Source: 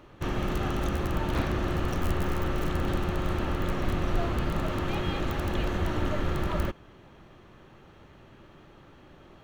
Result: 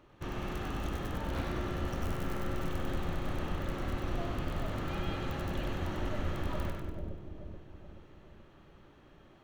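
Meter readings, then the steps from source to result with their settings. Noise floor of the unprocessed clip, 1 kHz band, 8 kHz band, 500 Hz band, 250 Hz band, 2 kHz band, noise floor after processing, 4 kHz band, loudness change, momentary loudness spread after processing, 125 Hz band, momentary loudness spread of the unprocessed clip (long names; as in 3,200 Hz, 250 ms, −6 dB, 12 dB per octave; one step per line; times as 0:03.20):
−53 dBFS, −7.0 dB, −6.0 dB, −7.0 dB, −7.0 dB, −6.5 dB, −59 dBFS, −6.5 dB, −7.0 dB, 12 LU, −6.5 dB, 1 LU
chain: echo with a time of its own for lows and highs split 650 Hz, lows 429 ms, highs 97 ms, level −3.5 dB
level −8.5 dB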